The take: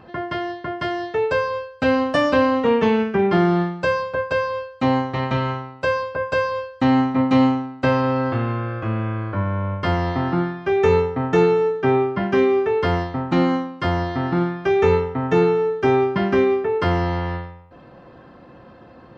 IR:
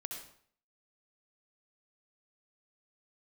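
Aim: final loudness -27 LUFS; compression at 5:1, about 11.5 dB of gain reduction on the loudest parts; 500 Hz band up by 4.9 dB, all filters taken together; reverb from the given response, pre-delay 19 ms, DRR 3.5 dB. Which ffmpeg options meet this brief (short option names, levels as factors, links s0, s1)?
-filter_complex "[0:a]equalizer=f=500:t=o:g=6,acompressor=threshold=0.0891:ratio=5,asplit=2[s0][s1];[1:a]atrim=start_sample=2205,adelay=19[s2];[s1][s2]afir=irnorm=-1:irlink=0,volume=0.794[s3];[s0][s3]amix=inputs=2:normalize=0,volume=0.596"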